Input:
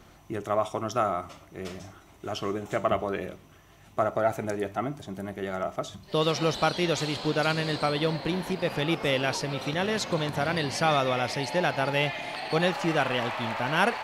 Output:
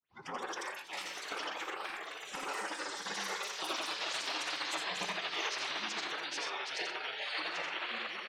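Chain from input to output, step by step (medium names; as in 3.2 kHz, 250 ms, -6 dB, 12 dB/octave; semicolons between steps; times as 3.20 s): tape start-up on the opening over 0.54 s; recorder AGC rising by 23 dB/s; low-pass 4.9 kHz 12 dB/octave; spectral noise reduction 18 dB; high-pass 460 Hz 12 dB/octave; compression 20:1, threshold -29 dBFS, peak gain reduction 15 dB; time stretch by phase-locked vocoder 0.59×; loudspeakers at several distances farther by 29 m -4 dB, 43 m -10 dB; ever faster or slower copies 241 ms, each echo +6 st, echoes 2, each echo -6 dB; simulated room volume 2000 m³, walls furnished, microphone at 0.71 m; spectral gate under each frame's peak -10 dB weak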